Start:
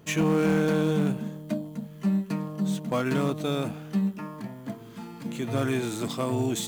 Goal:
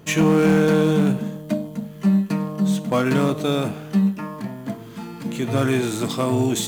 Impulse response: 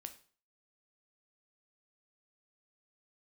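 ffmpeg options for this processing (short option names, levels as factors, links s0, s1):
-filter_complex "[0:a]asplit=2[s0][s1];[1:a]atrim=start_sample=2205,asetrate=31311,aresample=44100[s2];[s1][s2]afir=irnorm=-1:irlink=0,volume=1.19[s3];[s0][s3]amix=inputs=2:normalize=0,volume=1.19"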